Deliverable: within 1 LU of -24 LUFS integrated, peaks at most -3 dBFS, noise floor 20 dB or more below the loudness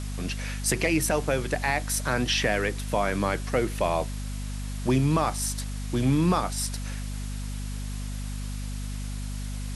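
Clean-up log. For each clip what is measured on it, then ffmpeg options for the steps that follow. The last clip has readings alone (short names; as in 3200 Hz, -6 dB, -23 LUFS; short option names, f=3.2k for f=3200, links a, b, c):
hum 50 Hz; harmonics up to 250 Hz; hum level -30 dBFS; noise floor -33 dBFS; noise floor target -48 dBFS; loudness -28.0 LUFS; peak -11.5 dBFS; loudness target -24.0 LUFS
-> -af "bandreject=f=50:t=h:w=6,bandreject=f=100:t=h:w=6,bandreject=f=150:t=h:w=6,bandreject=f=200:t=h:w=6,bandreject=f=250:t=h:w=6"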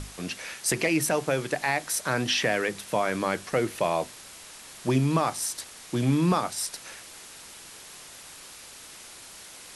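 hum none; noise floor -46 dBFS; noise floor target -47 dBFS
-> -af "afftdn=nr=6:nf=-46"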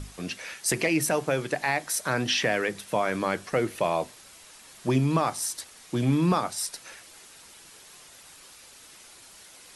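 noise floor -51 dBFS; loudness -27.0 LUFS; peak -12.5 dBFS; loudness target -24.0 LUFS
-> -af "volume=3dB"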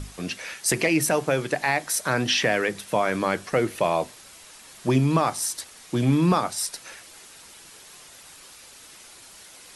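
loudness -24.0 LUFS; peak -9.5 dBFS; noise floor -48 dBFS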